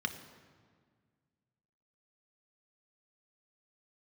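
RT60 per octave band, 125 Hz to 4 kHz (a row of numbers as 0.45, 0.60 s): 2.5, 2.3, 1.8, 1.7, 1.5, 1.2 s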